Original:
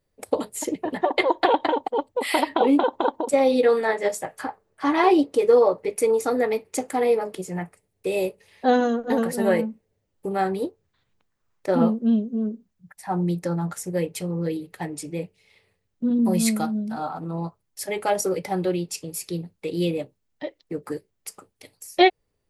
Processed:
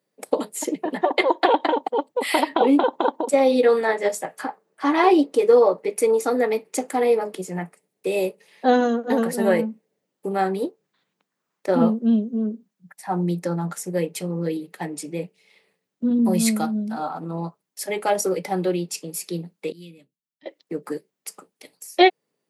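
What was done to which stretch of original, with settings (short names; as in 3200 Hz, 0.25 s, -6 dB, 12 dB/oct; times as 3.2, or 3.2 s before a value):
19.72–20.46 passive tone stack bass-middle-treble 6-0-2
whole clip: steep high-pass 160 Hz; gain +1.5 dB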